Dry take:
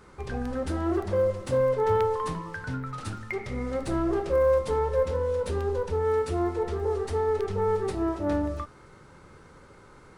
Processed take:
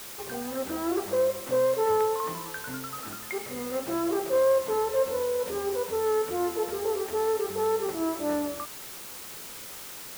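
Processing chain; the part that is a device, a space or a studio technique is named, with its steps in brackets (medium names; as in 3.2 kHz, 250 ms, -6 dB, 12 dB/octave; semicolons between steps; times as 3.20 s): wax cylinder (band-pass 260–2200 Hz; wow and flutter 24 cents; white noise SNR 13 dB)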